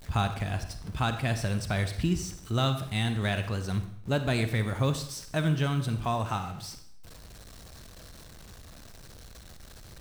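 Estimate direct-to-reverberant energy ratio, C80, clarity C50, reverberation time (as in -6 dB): 9.0 dB, 12.5 dB, 10.0 dB, 0.65 s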